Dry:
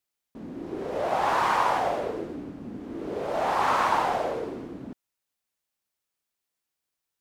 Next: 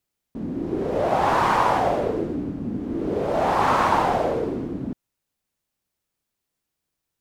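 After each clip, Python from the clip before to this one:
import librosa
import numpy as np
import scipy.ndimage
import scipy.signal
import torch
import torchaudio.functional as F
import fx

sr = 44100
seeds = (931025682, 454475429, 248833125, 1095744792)

y = fx.low_shelf(x, sr, hz=390.0, db=11.0)
y = y * 10.0 ** (2.0 / 20.0)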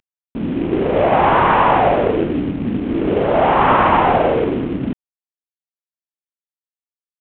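y = fx.cvsd(x, sr, bps=16000)
y = y * 10.0 ** (8.5 / 20.0)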